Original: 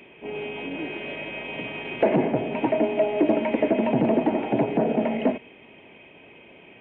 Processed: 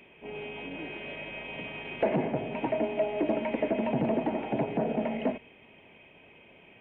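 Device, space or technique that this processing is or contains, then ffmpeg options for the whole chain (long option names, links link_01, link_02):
low shelf boost with a cut just above: -af "lowshelf=frequency=83:gain=7.5,equalizer=frequency=320:width_type=o:width=0.9:gain=-4,bandreject=frequency=60:width_type=h:width=6,bandreject=frequency=120:width_type=h:width=6,volume=-5.5dB"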